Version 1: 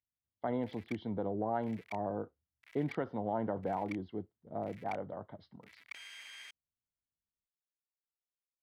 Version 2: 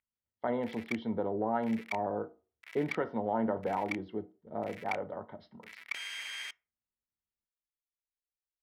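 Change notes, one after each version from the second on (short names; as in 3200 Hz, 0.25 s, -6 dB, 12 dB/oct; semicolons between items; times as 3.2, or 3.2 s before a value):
background +8.0 dB; reverb: on, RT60 0.35 s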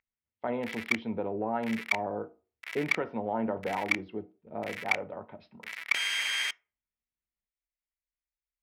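speech: remove Butterworth band-stop 2500 Hz, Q 3.6; background +10.5 dB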